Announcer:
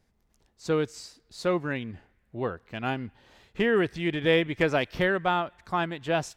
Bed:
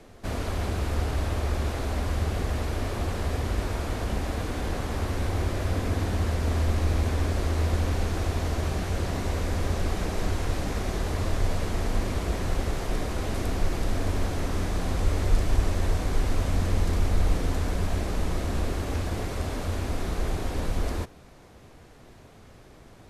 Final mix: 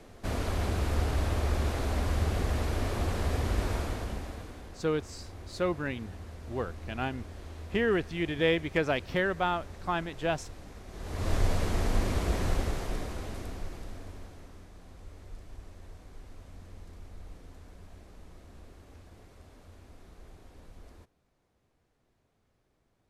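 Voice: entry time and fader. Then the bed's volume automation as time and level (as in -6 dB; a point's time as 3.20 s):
4.15 s, -3.5 dB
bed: 3.76 s -1.5 dB
4.75 s -18 dB
10.87 s -18 dB
11.32 s -1 dB
12.48 s -1 dB
14.68 s -23.5 dB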